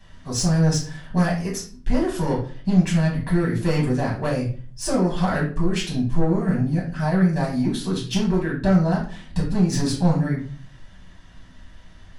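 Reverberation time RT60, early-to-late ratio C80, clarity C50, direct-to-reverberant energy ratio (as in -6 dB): 0.45 s, 11.5 dB, 6.5 dB, -5.0 dB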